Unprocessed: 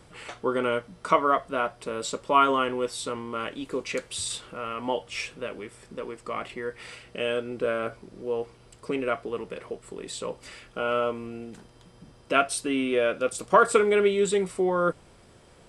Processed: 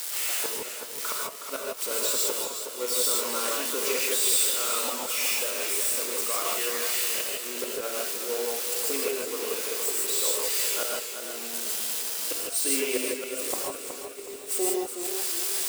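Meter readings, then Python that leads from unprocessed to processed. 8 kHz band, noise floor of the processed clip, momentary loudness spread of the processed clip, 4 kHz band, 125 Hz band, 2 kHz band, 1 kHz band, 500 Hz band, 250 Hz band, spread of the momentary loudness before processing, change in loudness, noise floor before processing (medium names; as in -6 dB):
+13.0 dB, -38 dBFS, 8 LU, +7.0 dB, under -15 dB, -1.5 dB, -10.0 dB, -6.0 dB, -7.0 dB, 17 LU, +1.0 dB, -55 dBFS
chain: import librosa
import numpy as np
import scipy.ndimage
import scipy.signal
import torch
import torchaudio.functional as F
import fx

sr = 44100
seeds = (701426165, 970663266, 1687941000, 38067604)

y = x + 0.5 * 10.0 ** (-19.5 / 20.0) * np.diff(np.sign(x), prepend=np.sign(x[:1]))
y = scipy.signal.sosfilt(scipy.signal.butter(4, 310.0, 'highpass', fs=sr, output='sos'), y)
y = fx.gate_flip(y, sr, shuts_db=-13.0, range_db=-28)
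y = fx.echo_heads(y, sr, ms=325, heads='all three', feedback_pct=71, wet_db=-24.0)
y = fx.rev_gated(y, sr, seeds[0], gate_ms=180, shape='rising', drr_db=-2.5)
y = fx.echo_warbled(y, sr, ms=370, feedback_pct=35, rate_hz=2.8, cents=70, wet_db=-8.0)
y = y * librosa.db_to_amplitude(-3.5)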